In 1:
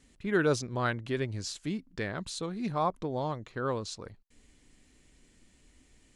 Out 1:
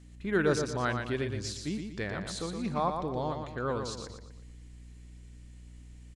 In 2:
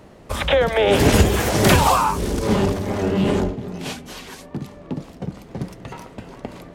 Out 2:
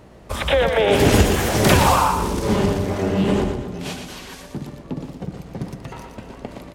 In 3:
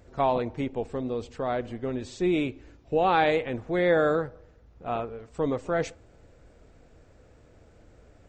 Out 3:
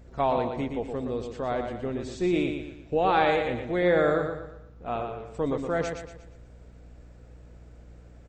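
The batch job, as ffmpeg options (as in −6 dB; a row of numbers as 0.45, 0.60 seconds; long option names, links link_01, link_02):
-filter_complex "[0:a]aeval=exprs='val(0)+0.00316*(sin(2*PI*60*n/s)+sin(2*PI*2*60*n/s)/2+sin(2*PI*3*60*n/s)/3+sin(2*PI*4*60*n/s)/4+sin(2*PI*5*60*n/s)/5)':channel_layout=same,asplit=2[link_01][link_02];[link_02]aecho=0:1:118|236|354|472|590:0.501|0.2|0.0802|0.0321|0.0128[link_03];[link_01][link_03]amix=inputs=2:normalize=0,volume=-1dB"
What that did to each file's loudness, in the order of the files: 0.0, 0.0, 0.0 LU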